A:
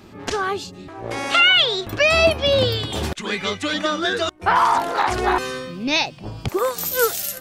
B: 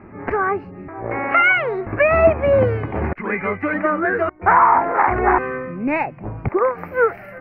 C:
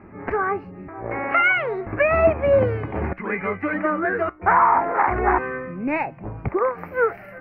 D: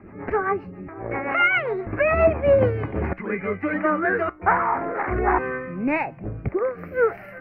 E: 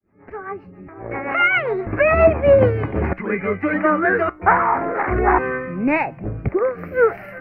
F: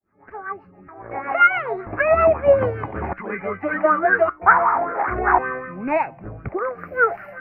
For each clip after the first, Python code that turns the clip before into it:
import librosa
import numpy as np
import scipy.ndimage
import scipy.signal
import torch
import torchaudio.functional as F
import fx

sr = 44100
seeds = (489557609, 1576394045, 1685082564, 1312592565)

y1 = scipy.signal.sosfilt(scipy.signal.ellip(4, 1.0, 40, 2200.0, 'lowpass', fs=sr, output='sos'), x)
y1 = F.gain(torch.from_numpy(y1), 4.0).numpy()
y2 = fx.comb_fb(y1, sr, f0_hz=62.0, decay_s=0.23, harmonics='odd', damping=0.0, mix_pct=40)
y3 = fx.rotary_switch(y2, sr, hz=7.5, then_hz=0.6, switch_at_s=2.44)
y3 = F.gain(torch.from_numpy(y3), 2.0).numpy()
y4 = fx.fade_in_head(y3, sr, length_s=1.84)
y4 = F.gain(torch.from_numpy(y4), 4.5).numpy()
y5 = fx.bell_lfo(y4, sr, hz=5.2, low_hz=670.0, high_hz=1500.0, db=15)
y5 = F.gain(torch.from_numpy(y5), -8.5).numpy()